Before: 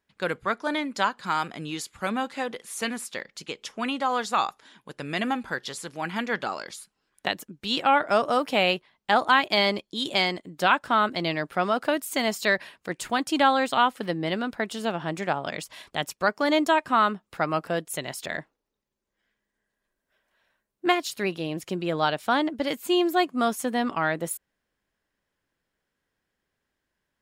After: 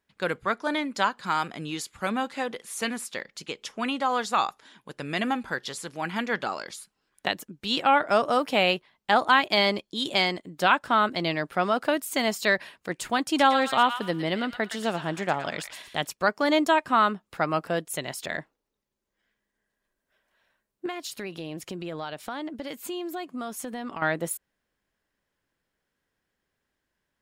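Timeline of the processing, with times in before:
13.23–16.07 s: feedback echo behind a high-pass 114 ms, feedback 30%, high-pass 1.4 kHz, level -6.5 dB
20.86–24.02 s: compression 4:1, threshold -32 dBFS

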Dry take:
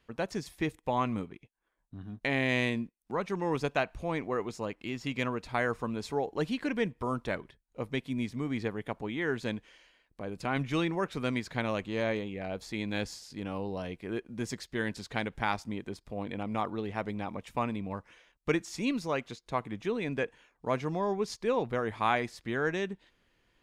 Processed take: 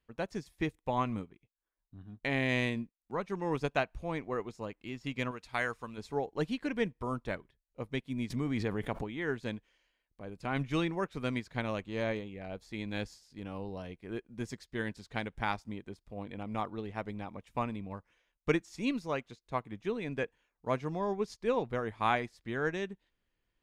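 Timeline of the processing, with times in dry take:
5.31–5.98 s: tilt shelf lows -6 dB, about 1.1 kHz
8.30–9.04 s: level flattener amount 70%
whole clip: bass shelf 80 Hz +8 dB; upward expansion 1.5:1, over -51 dBFS

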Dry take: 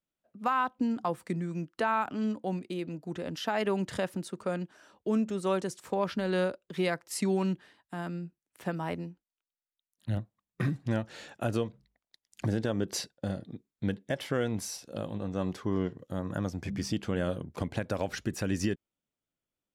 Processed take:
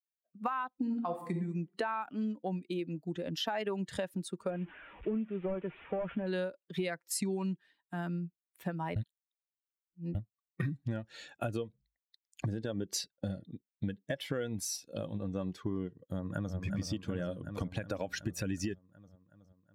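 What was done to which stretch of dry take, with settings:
0.72–1.32 s: reverb throw, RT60 0.82 s, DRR 1.5 dB
4.50–6.27 s: one-bit delta coder 16 kbps, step -41.5 dBFS
8.96–10.15 s: reverse
16.05–16.56 s: echo throw 370 ms, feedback 75%, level -3.5 dB
whole clip: expander on every frequency bin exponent 1.5; compression, threshold -39 dBFS; trim +7 dB

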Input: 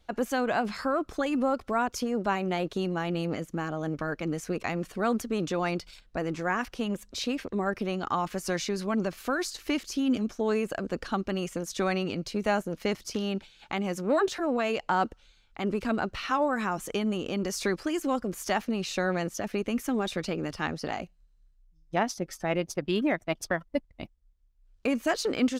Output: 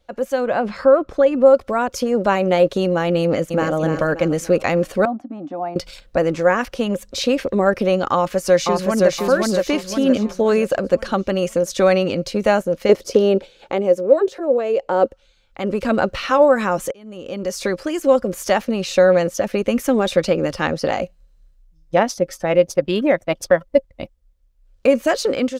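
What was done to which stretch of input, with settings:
0.47–1.46 s: low-pass 2.2 kHz 6 dB/octave
3.21–3.75 s: echo throw 290 ms, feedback 40%, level -6.5 dB
5.05–5.76 s: two resonant band-passes 460 Hz, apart 1.4 oct
8.14–9.10 s: echo throw 520 ms, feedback 40%, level -1 dB
12.89–15.06 s: peaking EQ 440 Hz +14 dB 1.2 oct
16.91–18.30 s: fade in
whole clip: peaking EQ 540 Hz +14 dB 0.23 oct; level rider gain up to 12 dB; trim -1 dB

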